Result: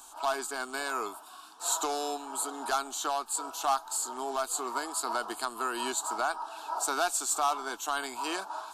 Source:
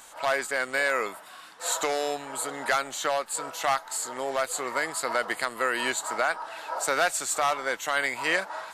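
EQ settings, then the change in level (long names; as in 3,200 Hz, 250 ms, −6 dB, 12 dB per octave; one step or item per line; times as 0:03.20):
parametric band 160 Hz −14 dB 0.4 octaves
phaser with its sweep stopped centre 530 Hz, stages 6
0.0 dB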